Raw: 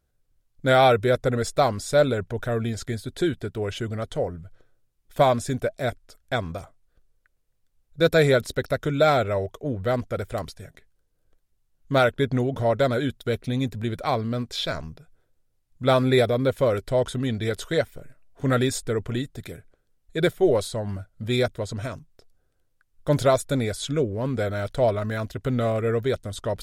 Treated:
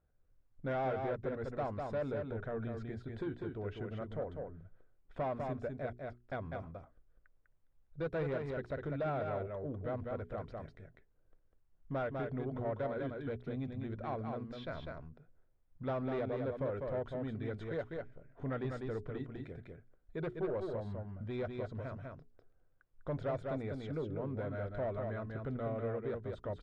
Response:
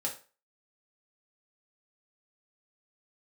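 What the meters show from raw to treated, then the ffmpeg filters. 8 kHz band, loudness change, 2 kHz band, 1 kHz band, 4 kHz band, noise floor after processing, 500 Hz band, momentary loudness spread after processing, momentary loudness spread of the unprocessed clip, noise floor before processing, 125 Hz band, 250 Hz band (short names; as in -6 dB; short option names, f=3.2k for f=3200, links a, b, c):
under -35 dB, -15.5 dB, -18.0 dB, -16.0 dB, -27.0 dB, -71 dBFS, -15.0 dB, 11 LU, 11 LU, -70 dBFS, -14.0 dB, -14.0 dB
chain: -af "asoftclip=type=tanh:threshold=-17.5dB,aecho=1:1:199:0.562,acompressor=threshold=-50dB:ratio=1.5,lowpass=1.7k,bandreject=f=60:t=h:w=6,bandreject=f=120:t=h:w=6,bandreject=f=180:t=h:w=6,bandreject=f=240:t=h:w=6,bandreject=f=300:t=h:w=6,bandreject=f=360:t=h:w=6,bandreject=f=420:t=h:w=6,volume=-3dB"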